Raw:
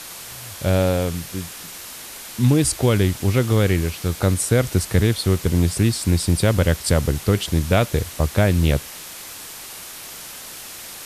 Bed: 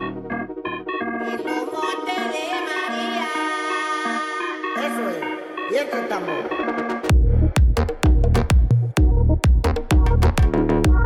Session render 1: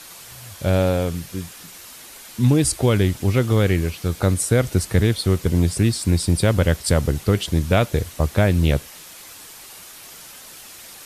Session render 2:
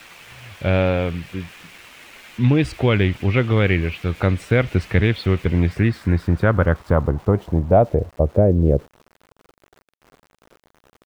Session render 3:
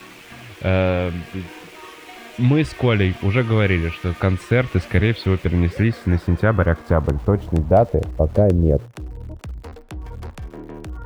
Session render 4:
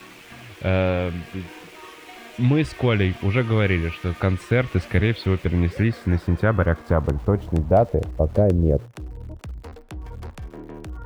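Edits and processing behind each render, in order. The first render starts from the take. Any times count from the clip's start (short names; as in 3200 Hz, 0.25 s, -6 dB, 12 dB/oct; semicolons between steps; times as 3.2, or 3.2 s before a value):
denoiser 6 dB, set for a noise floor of -37 dBFS
low-pass sweep 2500 Hz -> 480 Hz, 5.41–8.55; sample gate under -43.5 dBFS
add bed -17 dB
gain -2.5 dB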